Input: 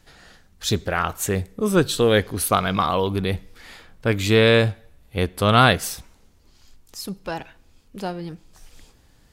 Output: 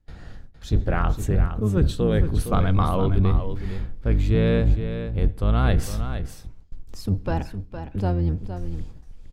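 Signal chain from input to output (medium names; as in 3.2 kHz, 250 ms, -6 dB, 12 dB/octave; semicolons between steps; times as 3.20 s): octave divider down 1 oct, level +1 dB; gate with hold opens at -39 dBFS; tilt EQ -3 dB/octave; reverse; compression 6:1, threshold -17 dBFS, peak gain reduction 14 dB; reverse; delay 462 ms -9.5 dB; on a send at -20 dB: reverberation RT60 0.35 s, pre-delay 4 ms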